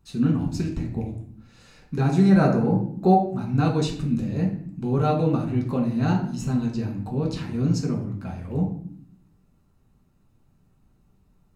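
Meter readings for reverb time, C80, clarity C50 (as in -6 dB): not exponential, 11.0 dB, 7.0 dB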